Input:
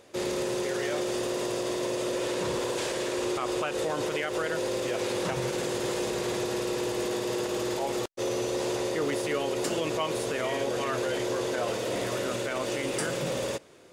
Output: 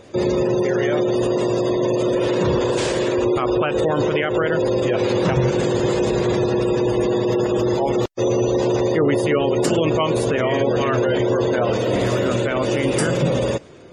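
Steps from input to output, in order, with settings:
gate on every frequency bin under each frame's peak −25 dB strong
low-shelf EQ 260 Hz +11 dB
level +8 dB

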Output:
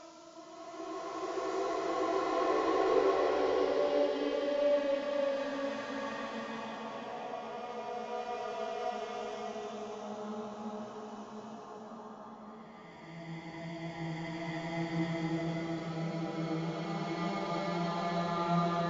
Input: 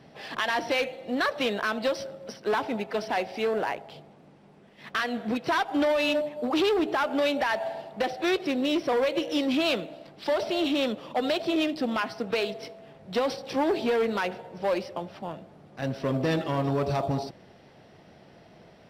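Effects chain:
fade in at the beginning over 3.31 s
noise reduction from a noise print of the clip's start 13 dB
feedback echo with a high-pass in the loop 339 ms, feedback 63%, high-pass 320 Hz, level −24 dB
square-wave tremolo 1.4 Hz, depth 60%, duty 25%
Butterworth low-pass 6,000 Hz 72 dB per octave
pitch shifter +3.5 semitones
multi-voice chorus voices 2, 0.17 Hz, delay 12 ms, depth 2.8 ms
extreme stretch with random phases 5.5×, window 0.50 s, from 0:13.34
slow-attack reverb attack 1,400 ms, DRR −8 dB
level −8 dB

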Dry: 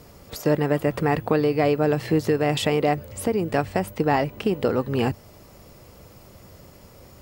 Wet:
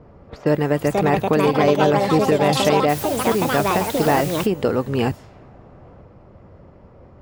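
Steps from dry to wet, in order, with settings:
delay with pitch and tempo change per echo 602 ms, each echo +5 semitones, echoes 2
low-pass that shuts in the quiet parts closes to 1,100 Hz, open at −20.5 dBFS
0:02.88–0:04.45: background noise white −36 dBFS
level +2.5 dB

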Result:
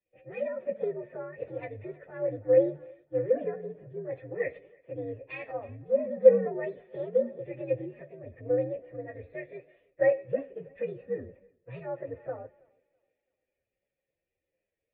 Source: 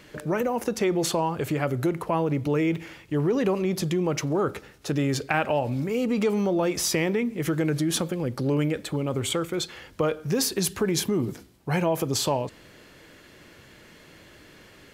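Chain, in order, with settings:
partials spread apart or drawn together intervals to 127%
in parallel at −1 dB: downward compressor, threshold −35 dBFS, peak gain reduction 14 dB
on the sum: formant resonators in series e
feedback echo with a high-pass in the loop 328 ms, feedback 60%, high-pass 180 Hz, level −17 dB
multiband upward and downward expander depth 100%
level +2 dB

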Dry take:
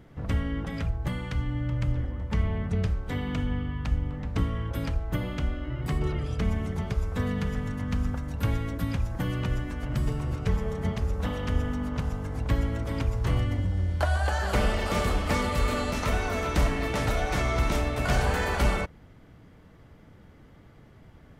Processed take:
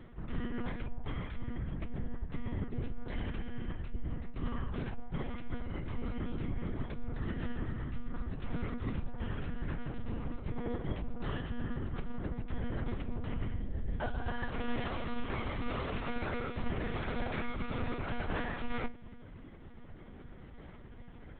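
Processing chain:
sub-octave generator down 2 octaves, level +2 dB
reversed playback
downward compressor 6 to 1, threshold −32 dBFS, peak gain reduction 16.5 dB
reversed playback
resonators tuned to a chord C#2 major, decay 0.21 s
one-pitch LPC vocoder at 8 kHz 240 Hz
level +9 dB

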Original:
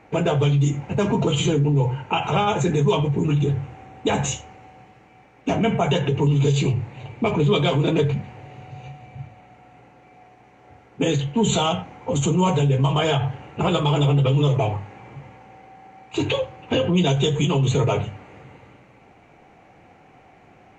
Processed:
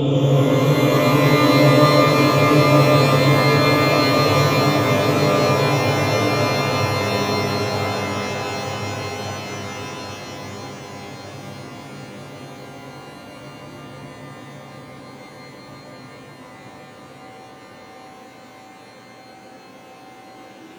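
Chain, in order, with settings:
extreme stretch with random phases 14×, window 1.00 s, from 0:14.30
octave-band graphic EQ 250/500/4,000 Hz +12/+5/+6 dB
reverb with rising layers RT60 3.2 s, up +12 semitones, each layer −2 dB, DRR 2 dB
level −5 dB

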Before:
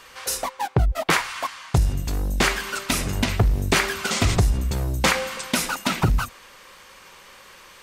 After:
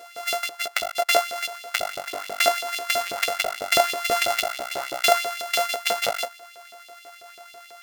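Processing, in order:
samples sorted by size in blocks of 64 samples
auto-filter high-pass saw up 6.1 Hz 400–3,900 Hz

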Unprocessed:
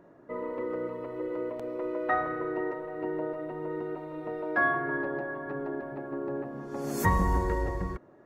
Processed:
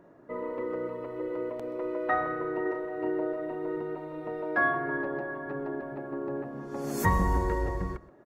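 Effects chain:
0:02.62–0:03.77: double-tracking delay 35 ms −5 dB
single-tap delay 127 ms −19.5 dB

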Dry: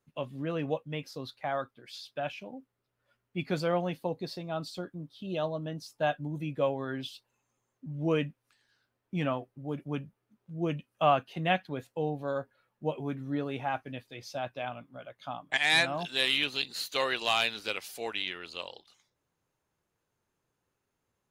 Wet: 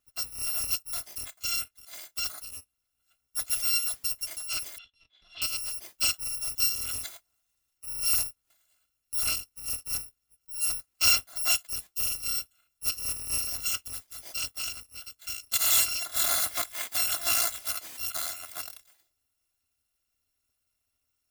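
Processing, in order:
samples in bit-reversed order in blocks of 256 samples
0:04.78–0:05.42: transistor ladder low-pass 3,600 Hz, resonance 80%
level +2 dB

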